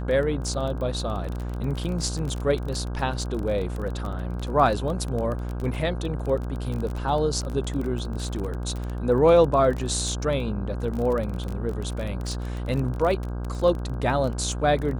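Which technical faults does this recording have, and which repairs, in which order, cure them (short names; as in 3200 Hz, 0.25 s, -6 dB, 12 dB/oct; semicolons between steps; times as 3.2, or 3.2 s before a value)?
buzz 60 Hz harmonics 27 -30 dBFS
crackle 21/s -28 dBFS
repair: de-click; de-hum 60 Hz, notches 27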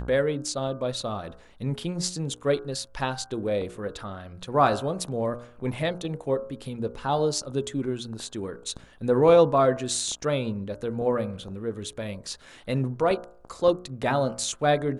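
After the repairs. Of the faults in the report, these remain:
none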